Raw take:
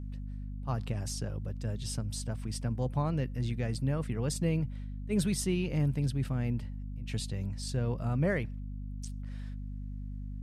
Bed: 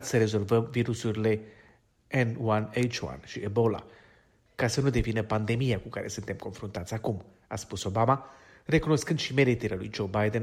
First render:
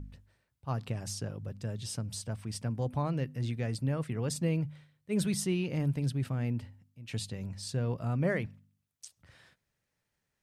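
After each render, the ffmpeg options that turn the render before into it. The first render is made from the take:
-af "bandreject=f=50:t=h:w=4,bandreject=f=100:t=h:w=4,bandreject=f=150:t=h:w=4,bandreject=f=200:t=h:w=4,bandreject=f=250:t=h:w=4"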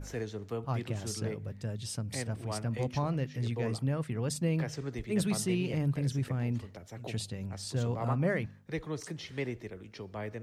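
-filter_complex "[1:a]volume=-12.5dB[a];[0:a][a]amix=inputs=2:normalize=0"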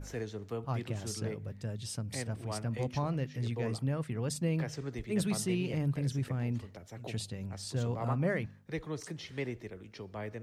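-af "volume=-1.5dB"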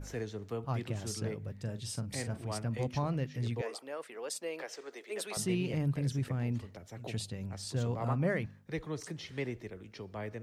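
-filter_complex "[0:a]asettb=1/sr,asplit=3[a][b][c];[a]atrim=end=1.564[d];[b]atrim=start=1.56:end=2.43,asetpts=PTS-STARTPTS,afade=t=in:d=0.004:c=qsin,afade=t=out:st=0.866:d=0.004:c=qsin,asplit=2[e][f];[f]adelay=42,volume=-11dB[g];[e][g]amix=inputs=2:normalize=0,atrim=end_sample=38367[h];[c]atrim=start=2.426[i];[d][h]acrossfade=d=0.004:c1=hsin:c2=qsin[j];[j][i]acrossfade=d=0.004:c1=qsin:c2=hsin,asettb=1/sr,asplit=3[k][l][m];[k]atrim=end=3.614[n];[l]atrim=start=3.61:end=5.37,asetpts=PTS-STARTPTS,afade=t=in:d=0.004:c=qsin,afade=t=out:st=1.756:d=0.004:c=qsin,highpass=f=410:w=0.5412,highpass=f=410:w=1.3066[o];[m]atrim=start=5.366[p];[n][o]acrossfade=d=0.004:c1=hsin:c2=qsin[q];[q][p]acrossfade=d=0.004:c1=qsin:c2=hsin"

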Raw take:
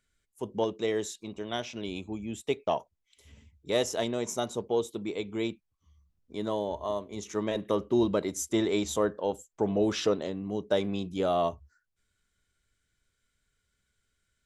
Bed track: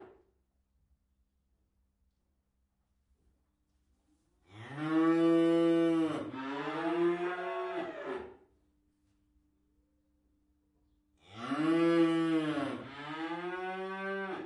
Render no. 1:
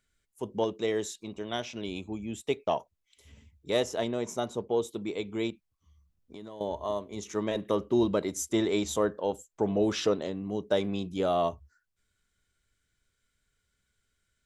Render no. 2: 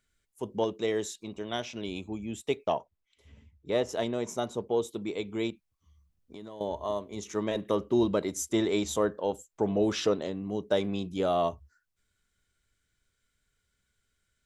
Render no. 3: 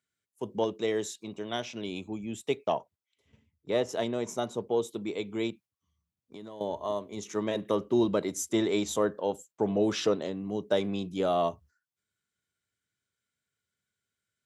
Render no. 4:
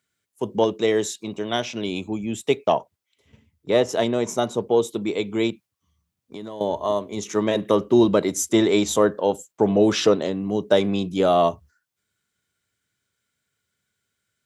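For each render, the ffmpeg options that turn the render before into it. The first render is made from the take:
-filter_complex "[0:a]asettb=1/sr,asplit=3[a][b][c];[a]atrim=end=3.804[d];[b]atrim=start=3.8:end=4.82,asetpts=PTS-STARTPTS,afade=t=in:d=0.004:c=qsin,afade=t=out:st=1.016:d=0.004:c=qsin,highshelf=f=3.8k:g=-7[e];[c]atrim=start=4.816[f];[d][e]acrossfade=d=0.004:c1=hsin:c2=qsin[g];[g][f]acrossfade=d=0.004:c1=qsin:c2=hsin,asettb=1/sr,asplit=3[h][i][j];[h]atrim=end=5.504[k];[i]atrim=start=5.5:end=6.61,asetpts=PTS-STARTPTS,afade=t=in:d=0.004:c=qsin,afade=t=out:st=1.106:d=0.004:c=qsin,acompressor=threshold=-40dB:ratio=6:attack=3.2:release=140:knee=1:detection=peak[l];[j]atrim=start=6.606[m];[k][l]acrossfade=d=0.004:c1=hsin:c2=qsin[n];[n][m]acrossfade=d=0.004:c1=qsin:c2=hsin"
-filter_complex "[0:a]asettb=1/sr,asplit=3[a][b][c];[a]atrim=end=2.724[d];[b]atrim=start=2.72:end=3.89,asetpts=PTS-STARTPTS,afade=t=in:d=0.004:c=qsin,afade=t=out:st=1.166:d=0.004:c=qsin,aemphasis=mode=reproduction:type=75kf[e];[c]atrim=start=3.886[f];[d][e]acrossfade=d=0.004:c1=hsin:c2=qsin[g];[g][f]acrossfade=d=0.004:c1=qsin:c2=hsin"
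-af "agate=range=-8dB:threshold=-52dB:ratio=16:detection=peak,highpass=f=97:w=0.5412,highpass=f=97:w=1.3066"
-af "volume=9dB"

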